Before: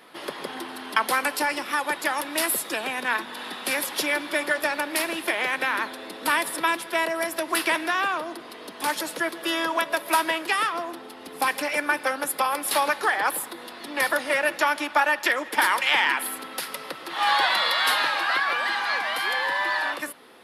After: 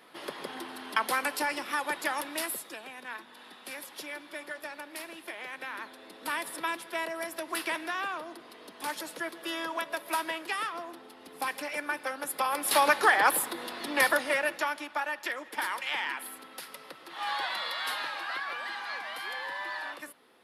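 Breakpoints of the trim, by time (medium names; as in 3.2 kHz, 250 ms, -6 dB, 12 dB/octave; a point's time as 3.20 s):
2.22 s -5.5 dB
2.83 s -15.5 dB
5.43 s -15.5 dB
6.54 s -9 dB
12.16 s -9 dB
12.92 s +1 dB
13.92 s +1 dB
14.89 s -11.5 dB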